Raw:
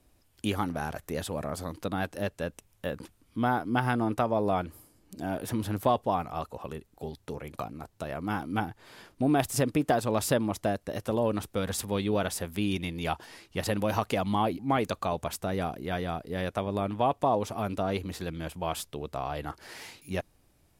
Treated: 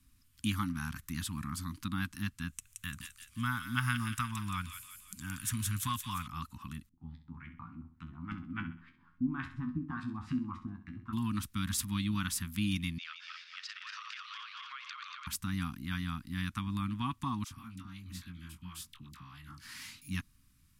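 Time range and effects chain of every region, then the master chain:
2.48–6.27 s: FFT filter 110 Hz 0 dB, 360 Hz -12 dB, 670 Hz -10 dB, 1.1 kHz 0 dB, 2.4 kHz +3 dB, 4.9 kHz 0 dB, 7.2 kHz +10 dB, 13 kHz +3 dB + feedback echo behind a high-pass 173 ms, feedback 47%, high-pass 2.2 kHz, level -3.5 dB
6.89–11.13 s: LFO low-pass saw up 3.5 Hz 260–2500 Hz + feedback comb 84 Hz, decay 0.18 s, mix 90% + feedback delay 65 ms, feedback 39%, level -11 dB
12.98–15.27 s: backward echo that repeats 117 ms, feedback 73%, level -5.5 dB + elliptic band-pass 1.3–5.5 kHz, stop band 60 dB + compression 5:1, threshold -38 dBFS
17.44–19.65 s: compression 3:1, threshold -43 dBFS + doubling 22 ms -7 dB + phase dispersion lows, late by 71 ms, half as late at 780 Hz
whole clip: Chebyshev band-stop 260–1100 Hz, order 3; peaking EQ 990 Hz -2.5 dB 2.9 oct

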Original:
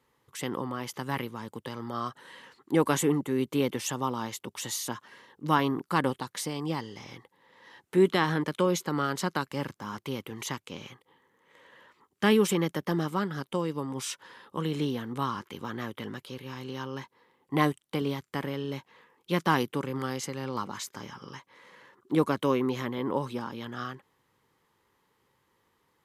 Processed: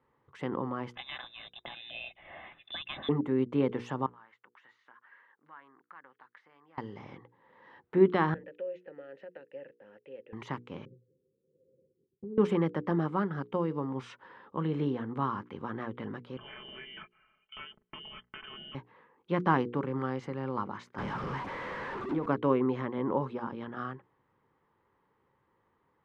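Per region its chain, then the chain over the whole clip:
0.95–3.09 s: comb of notches 480 Hz + frequency inversion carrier 3.8 kHz + three bands compressed up and down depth 70%
4.06–6.78 s: compression 2.5:1, threshold -45 dBFS + band-pass filter 1.7 kHz, Q 2.1
8.34–10.33 s: peaking EQ 2.7 kHz +6.5 dB 0.2 oct + compression 3:1, threshold -28 dBFS + vowel filter e
10.85–12.38 s: rippled Chebyshev low-pass 540 Hz, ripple 9 dB + compression 2.5:1, threshold -42 dBFS
16.37–18.75 s: comb 4.5 ms, depth 67% + compression, threshold -34 dBFS + frequency inversion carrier 3.3 kHz
20.98–22.26 s: jump at every zero crossing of -30 dBFS + compression 12:1, threshold -26 dBFS
whole clip: low-pass 1.6 kHz 12 dB/octave; hum notches 60/120/180/240/300/360/420/480 Hz; de-esser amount 90%

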